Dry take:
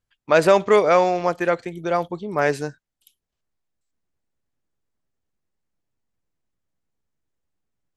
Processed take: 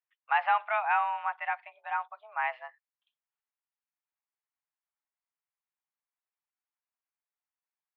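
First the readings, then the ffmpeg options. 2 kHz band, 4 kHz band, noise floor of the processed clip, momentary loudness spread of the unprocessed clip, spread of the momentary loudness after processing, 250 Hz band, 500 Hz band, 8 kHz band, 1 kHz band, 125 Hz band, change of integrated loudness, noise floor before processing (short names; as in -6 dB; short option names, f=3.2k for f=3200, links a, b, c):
-5.0 dB, -13.5 dB, under -85 dBFS, 11 LU, 11 LU, under -40 dB, -25.0 dB, under -35 dB, -5.0 dB, under -40 dB, -11.0 dB, -82 dBFS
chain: -af "highpass=f=590:t=q:w=0.5412,highpass=f=590:t=q:w=1.307,lowpass=f=2.6k:t=q:w=0.5176,lowpass=f=2.6k:t=q:w=0.7071,lowpass=f=2.6k:t=q:w=1.932,afreqshift=230,volume=-8dB"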